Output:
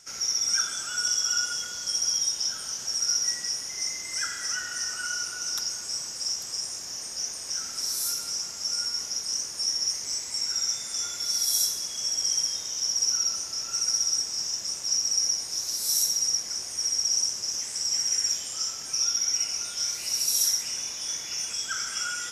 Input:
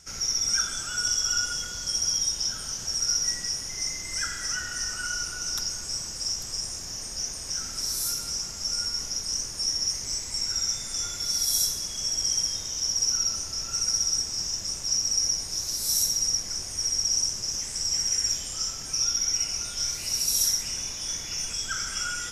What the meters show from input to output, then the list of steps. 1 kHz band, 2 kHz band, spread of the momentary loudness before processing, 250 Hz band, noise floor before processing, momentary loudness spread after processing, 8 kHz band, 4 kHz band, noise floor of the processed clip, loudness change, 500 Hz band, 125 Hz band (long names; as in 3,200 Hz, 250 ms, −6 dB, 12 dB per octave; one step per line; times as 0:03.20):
−0.5 dB, −0.5 dB, 7 LU, −6.0 dB, −36 dBFS, 7 LU, 0.0 dB, 0.0 dB, −37 dBFS, 0.0 dB, −2.5 dB, below −10 dB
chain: high-pass filter 410 Hz 6 dB per octave